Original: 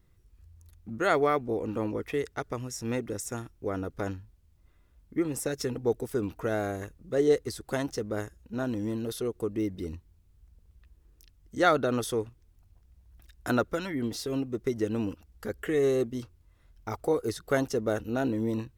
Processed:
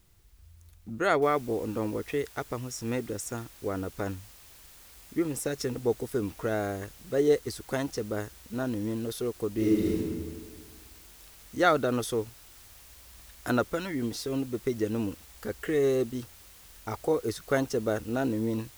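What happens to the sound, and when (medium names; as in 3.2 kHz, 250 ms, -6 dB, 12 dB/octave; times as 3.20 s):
1.22 s: noise floor step -69 dB -53 dB
9.53–9.95 s: reverb throw, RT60 1.7 s, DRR -5.5 dB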